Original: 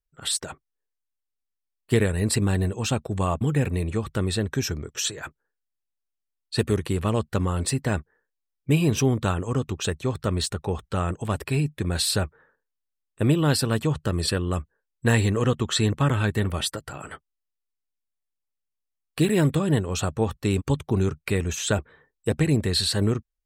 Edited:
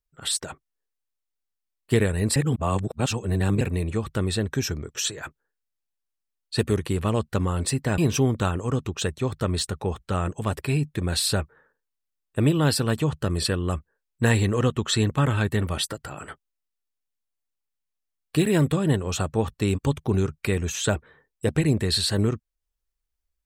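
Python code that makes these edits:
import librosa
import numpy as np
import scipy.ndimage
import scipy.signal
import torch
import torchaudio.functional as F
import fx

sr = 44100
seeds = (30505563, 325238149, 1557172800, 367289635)

y = fx.edit(x, sr, fx.reverse_span(start_s=2.36, length_s=1.25),
    fx.cut(start_s=7.98, length_s=0.83), tone=tone)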